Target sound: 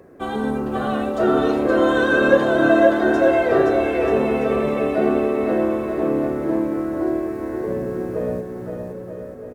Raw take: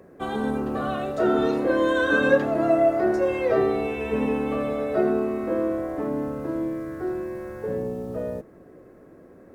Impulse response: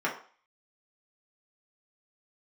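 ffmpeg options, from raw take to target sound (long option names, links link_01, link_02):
-af "flanger=delay=2.3:depth=4.4:regen=-73:speed=0.56:shape=triangular,aecho=1:1:520|936|1269|1535|1748:0.631|0.398|0.251|0.158|0.1,volume=7dB"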